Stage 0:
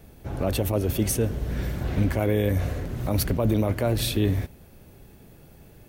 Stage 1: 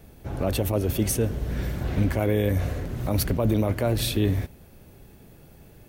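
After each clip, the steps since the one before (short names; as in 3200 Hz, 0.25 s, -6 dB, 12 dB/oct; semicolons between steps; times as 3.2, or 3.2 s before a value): nothing audible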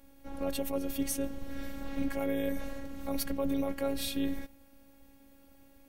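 robotiser 276 Hz; gain -5.5 dB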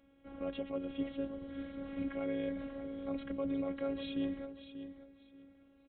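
notch comb 880 Hz; feedback echo 0.588 s, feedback 22%, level -11 dB; downsampling 8000 Hz; gain -4.5 dB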